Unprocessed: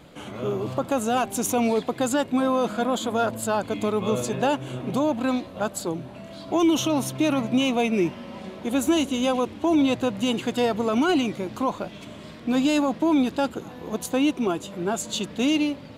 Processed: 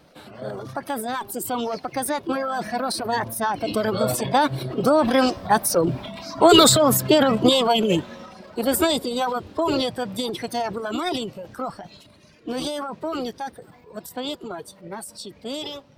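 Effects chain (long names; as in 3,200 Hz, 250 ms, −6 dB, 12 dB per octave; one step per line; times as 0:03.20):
source passing by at 0:06.11, 7 m/s, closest 8.3 metres
formants moved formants +4 semitones
reverb reduction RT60 1.9 s
transient designer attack +2 dB, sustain +8 dB
level +8.5 dB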